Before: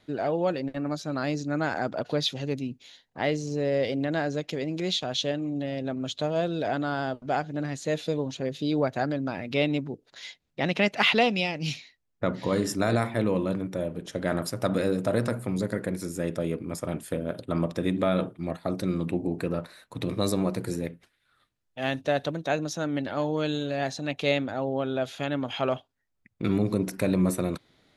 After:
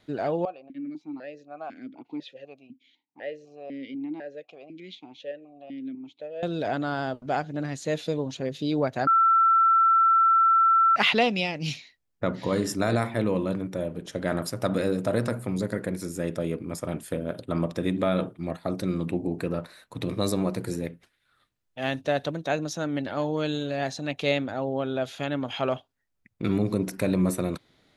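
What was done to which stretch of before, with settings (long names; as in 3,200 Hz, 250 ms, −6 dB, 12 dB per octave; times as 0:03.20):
0:00.45–0:06.43: formant filter that steps through the vowels 4 Hz
0:09.07–0:10.96: beep over 1,340 Hz −16 dBFS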